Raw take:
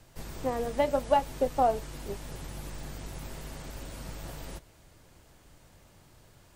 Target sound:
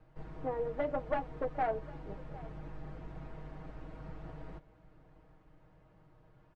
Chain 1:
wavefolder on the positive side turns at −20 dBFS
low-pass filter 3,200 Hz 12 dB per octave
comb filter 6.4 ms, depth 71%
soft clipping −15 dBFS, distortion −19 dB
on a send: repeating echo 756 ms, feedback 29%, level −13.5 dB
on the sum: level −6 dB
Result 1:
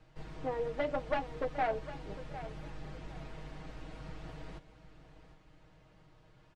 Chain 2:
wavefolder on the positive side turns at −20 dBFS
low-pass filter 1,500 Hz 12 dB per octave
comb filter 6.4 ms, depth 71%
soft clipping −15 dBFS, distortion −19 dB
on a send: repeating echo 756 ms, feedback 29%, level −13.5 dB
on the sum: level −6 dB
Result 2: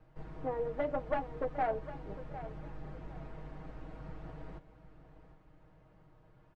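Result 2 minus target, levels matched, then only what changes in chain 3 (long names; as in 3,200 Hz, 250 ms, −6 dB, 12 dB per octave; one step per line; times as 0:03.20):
echo-to-direct +6.5 dB
change: repeating echo 756 ms, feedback 29%, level −20 dB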